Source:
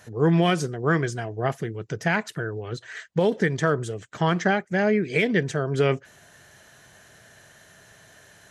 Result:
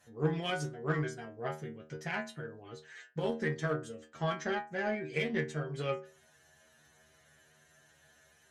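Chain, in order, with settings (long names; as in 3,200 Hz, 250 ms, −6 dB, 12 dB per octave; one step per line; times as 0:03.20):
stiff-string resonator 75 Hz, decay 0.43 s, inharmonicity 0.002
harmonic generator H 7 −29 dB, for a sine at −16.5 dBFS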